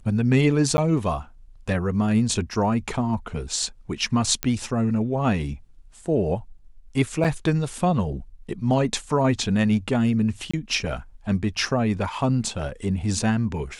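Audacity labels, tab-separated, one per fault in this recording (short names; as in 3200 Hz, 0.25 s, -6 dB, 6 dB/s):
0.770000	0.780000	gap 10 ms
4.430000	4.430000	pop -6 dBFS
7.240000	7.250000	gap 6.8 ms
10.510000	10.540000	gap 25 ms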